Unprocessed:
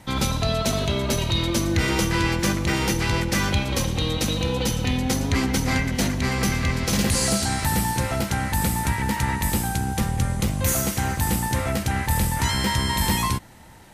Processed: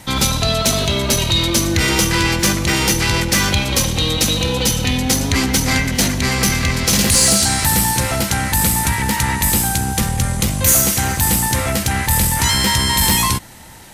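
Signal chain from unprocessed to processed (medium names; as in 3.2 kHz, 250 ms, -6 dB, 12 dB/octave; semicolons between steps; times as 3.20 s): in parallel at -4 dB: saturation -22 dBFS, distortion -11 dB; on the sum: treble shelf 2.7 kHz +8.5 dB; trim +1.5 dB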